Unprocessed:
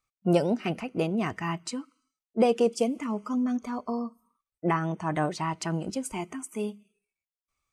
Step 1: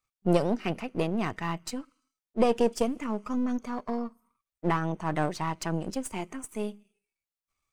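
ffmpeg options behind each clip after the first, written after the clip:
ffmpeg -i in.wav -af "aeval=exprs='if(lt(val(0),0),0.447*val(0),val(0))':channel_layout=same,volume=1dB" out.wav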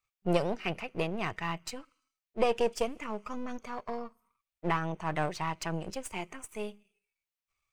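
ffmpeg -i in.wav -af "equalizer=frequency=250:width_type=o:width=0.67:gain=-10,equalizer=frequency=2500:width_type=o:width=0.67:gain=5,equalizer=frequency=10000:width_type=o:width=0.67:gain=-3,volume=-2dB" out.wav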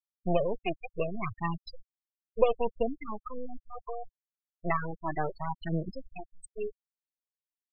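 ffmpeg -i in.wav -af "aphaser=in_gain=1:out_gain=1:delay=3:decay=0.49:speed=0.69:type=triangular,afftfilt=real='re*gte(hypot(re,im),0.0708)':imag='im*gte(hypot(re,im),0.0708)':win_size=1024:overlap=0.75,afftdn=noise_reduction=34:noise_floor=-51" out.wav

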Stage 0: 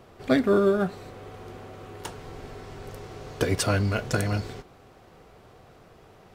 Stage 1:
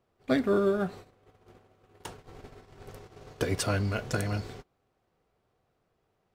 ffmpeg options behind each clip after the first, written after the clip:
ffmpeg -i in.wav -af "agate=range=-18dB:threshold=-39dB:ratio=16:detection=peak,volume=-4.5dB" out.wav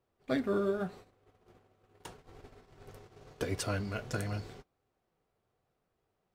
ffmpeg -i in.wav -af "flanger=delay=2:depth=7.6:regen=-64:speed=0.83:shape=triangular,volume=-1.5dB" out.wav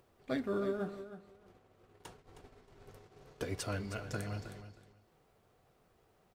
ffmpeg -i in.wav -af "acompressor=mode=upward:threshold=-52dB:ratio=2.5,aecho=1:1:314|628:0.266|0.0479,volume=-4dB" out.wav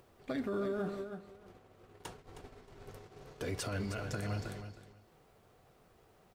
ffmpeg -i in.wav -af "alimiter=level_in=9.5dB:limit=-24dB:level=0:latency=1:release=33,volume=-9.5dB,volume=5dB" out.wav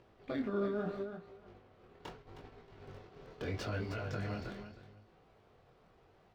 ffmpeg -i in.wav -filter_complex "[0:a]flanger=delay=17.5:depth=7.4:speed=0.77,acrossover=split=5400[link_01][link_02];[link_02]acrusher=samples=36:mix=1:aa=0.000001:lfo=1:lforange=21.6:lforate=2[link_03];[link_01][link_03]amix=inputs=2:normalize=0,volume=2.5dB" out.wav

